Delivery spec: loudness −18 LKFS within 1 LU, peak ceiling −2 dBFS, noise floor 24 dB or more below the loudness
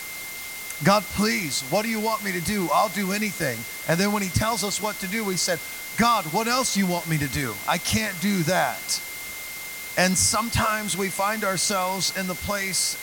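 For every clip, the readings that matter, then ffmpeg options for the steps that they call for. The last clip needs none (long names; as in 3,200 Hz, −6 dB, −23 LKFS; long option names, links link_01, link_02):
interfering tone 2,100 Hz; level of the tone −36 dBFS; background noise floor −35 dBFS; target noise floor −48 dBFS; integrated loudness −24.0 LKFS; sample peak −5.0 dBFS; target loudness −18.0 LKFS
→ -af "bandreject=frequency=2100:width=30"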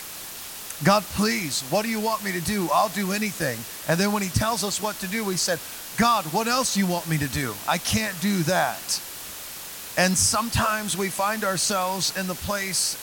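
interfering tone none found; background noise floor −37 dBFS; target noise floor −48 dBFS
→ -af "afftdn=noise_reduction=11:noise_floor=-37"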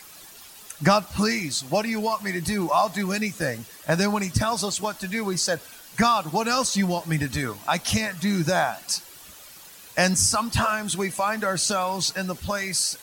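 background noise floor −46 dBFS; target noise floor −48 dBFS
→ -af "afftdn=noise_reduction=6:noise_floor=-46"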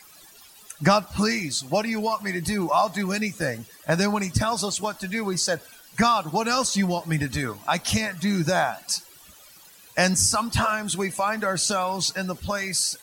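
background noise floor −50 dBFS; integrated loudness −24.5 LKFS; sample peak −6.0 dBFS; target loudness −18.0 LKFS
→ -af "volume=6.5dB,alimiter=limit=-2dB:level=0:latency=1"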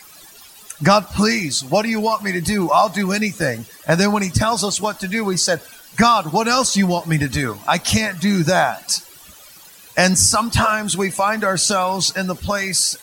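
integrated loudness −18.0 LKFS; sample peak −2.0 dBFS; background noise floor −44 dBFS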